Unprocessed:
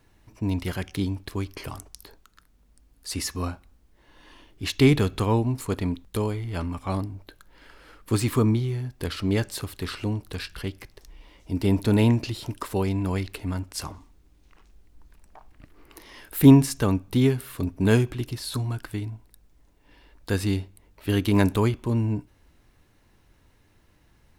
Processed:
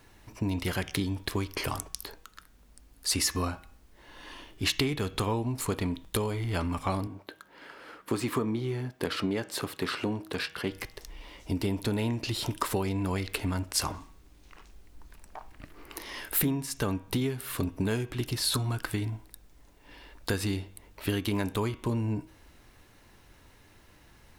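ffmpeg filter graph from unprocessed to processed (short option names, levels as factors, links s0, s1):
-filter_complex "[0:a]asettb=1/sr,asplit=3[s0][s1][s2];[s0]atrim=end=7.074[s3];[s1]atrim=start=7.07:end=10.72,asetpts=PTS-STARTPTS,afade=t=in:d=0.004:c=qsin,afade=t=out:st=3.646:d=0.004:c=qsin,highpass=170,equalizer=f=13000:t=o:w=2.9:g=-8.5[s4];[s2]atrim=start=10.716[s5];[s3][s4]acrossfade=d=0.004:c1=hsin:c2=qsin[s6];[s6][s5]acrossfade=d=0.004:c1=qsin:c2=hsin,acompressor=threshold=0.0355:ratio=16,lowshelf=f=350:g=-5.5,bandreject=f=159.5:t=h:w=4,bandreject=f=319:t=h:w=4,bandreject=f=478.5:t=h:w=4,bandreject=f=638:t=h:w=4,bandreject=f=797.5:t=h:w=4,bandreject=f=957:t=h:w=4,bandreject=f=1116.5:t=h:w=4,bandreject=f=1276:t=h:w=4,bandreject=f=1435.5:t=h:w=4,bandreject=f=1595:t=h:w=4,bandreject=f=1754.5:t=h:w=4,bandreject=f=1914:t=h:w=4,bandreject=f=2073.5:t=h:w=4,bandreject=f=2233:t=h:w=4,bandreject=f=2392.5:t=h:w=4,bandreject=f=2552:t=h:w=4,bandreject=f=2711.5:t=h:w=4,bandreject=f=2871:t=h:w=4,bandreject=f=3030.5:t=h:w=4,bandreject=f=3190:t=h:w=4,bandreject=f=3349.5:t=h:w=4,bandreject=f=3509:t=h:w=4,bandreject=f=3668.5:t=h:w=4,volume=2.24"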